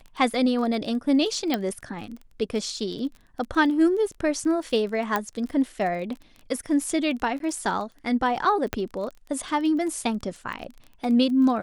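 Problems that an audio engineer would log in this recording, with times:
crackle 19/s -33 dBFS
1.54 pop -11 dBFS
5.16 pop -10 dBFS
7.39–7.4 gap
8.73 pop -10 dBFS

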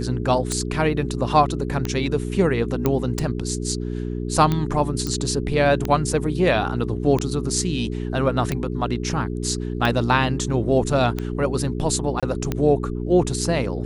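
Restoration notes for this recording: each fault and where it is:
hum 60 Hz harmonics 7 -27 dBFS
tick 45 rpm -10 dBFS
2.86 pop -7 dBFS
5.07 pop -12 dBFS
12.2–12.23 gap 26 ms

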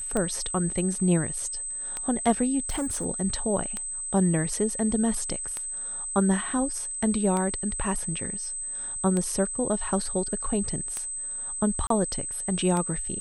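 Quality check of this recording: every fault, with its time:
tick 33 1/3 rpm -16 dBFS
tone 8200 Hz -31 dBFS
2.69–3.06 clipped -24.5 dBFS
11.87–11.9 gap 33 ms

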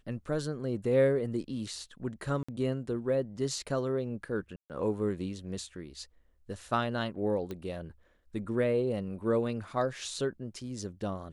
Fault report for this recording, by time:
2.43–2.48 gap 55 ms
4.56–4.7 gap 0.138 s
7.51 pop -25 dBFS

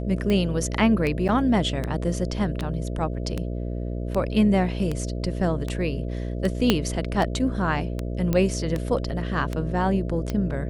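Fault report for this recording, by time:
buzz 60 Hz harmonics 11 -29 dBFS
tick 78 rpm -14 dBFS
1.28–1.29 gap 8.5 ms
6.7 pop -4 dBFS
8.33 pop -11 dBFS

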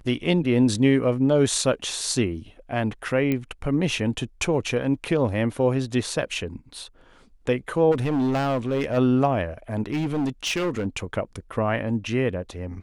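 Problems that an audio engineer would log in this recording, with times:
3.32 pop -13 dBFS
7.91–8.98 clipped -19.5 dBFS
9.86–10.87 clipped -21 dBFS

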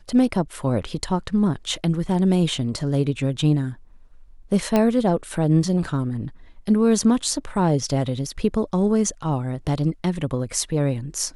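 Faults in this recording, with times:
4.76 pop -7 dBFS

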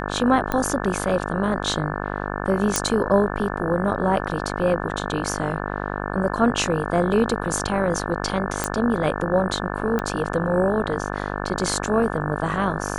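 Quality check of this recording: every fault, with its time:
buzz 50 Hz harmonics 35 -28 dBFS
0.52 pop -10 dBFS
2.76 pop
8.64 pop -6 dBFS
9.99 pop -12 dBFS

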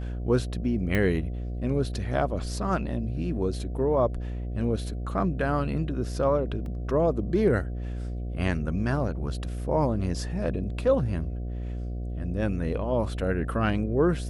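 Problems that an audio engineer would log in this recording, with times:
buzz 60 Hz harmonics 12 -32 dBFS
0.95 pop -14 dBFS
6.66 gap 2 ms

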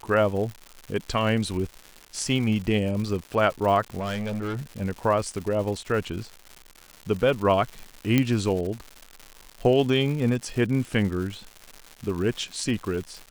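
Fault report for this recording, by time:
crackle 240/s -32 dBFS
4–4.82 clipped -26 dBFS
8.18 pop -8 dBFS

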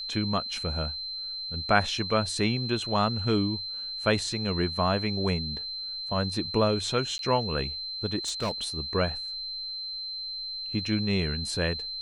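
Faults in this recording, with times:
tone 4100 Hz -33 dBFS
7.18–7.19 gap 12 ms
8.25–8.65 clipped -24.5 dBFS

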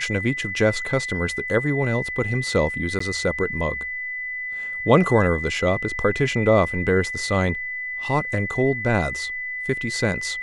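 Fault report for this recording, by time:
tone 2000 Hz -27 dBFS
2.99–3 gap 14 ms

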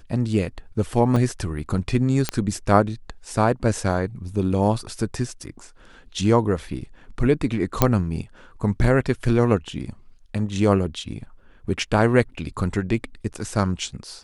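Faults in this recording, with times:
1.16 gap 4.4 ms
2.29 pop -6 dBFS
7.82 pop -1 dBFS

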